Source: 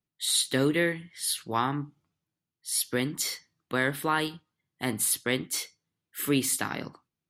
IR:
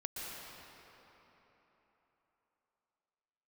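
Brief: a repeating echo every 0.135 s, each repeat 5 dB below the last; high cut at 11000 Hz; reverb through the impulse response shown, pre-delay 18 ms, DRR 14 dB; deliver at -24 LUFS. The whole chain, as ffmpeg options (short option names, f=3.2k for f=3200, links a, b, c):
-filter_complex "[0:a]lowpass=11k,aecho=1:1:135|270|405|540|675|810|945:0.562|0.315|0.176|0.0988|0.0553|0.031|0.0173,asplit=2[a][b];[1:a]atrim=start_sample=2205,adelay=18[c];[b][c]afir=irnorm=-1:irlink=0,volume=-15dB[d];[a][d]amix=inputs=2:normalize=0,volume=3.5dB"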